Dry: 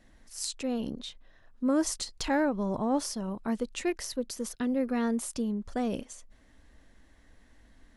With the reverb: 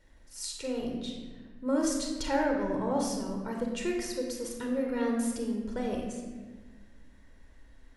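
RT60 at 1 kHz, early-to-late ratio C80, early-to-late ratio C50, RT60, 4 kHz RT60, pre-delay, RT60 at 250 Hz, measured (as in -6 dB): 1.2 s, 5.0 dB, 2.5 dB, 1.4 s, 1.0 s, 28 ms, 2.1 s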